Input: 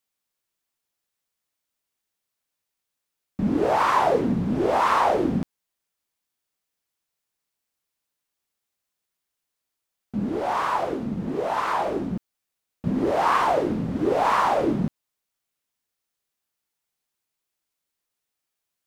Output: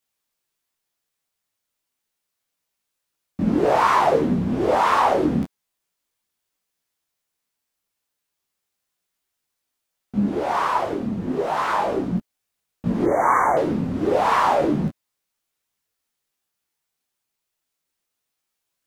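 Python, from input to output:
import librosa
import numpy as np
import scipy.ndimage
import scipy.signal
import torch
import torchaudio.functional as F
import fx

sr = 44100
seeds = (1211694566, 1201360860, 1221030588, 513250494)

y = fx.brickwall_bandstop(x, sr, low_hz=2300.0, high_hz=5800.0, at=(13.04, 13.57))
y = fx.detune_double(y, sr, cents=11)
y = y * 10.0 ** (6.5 / 20.0)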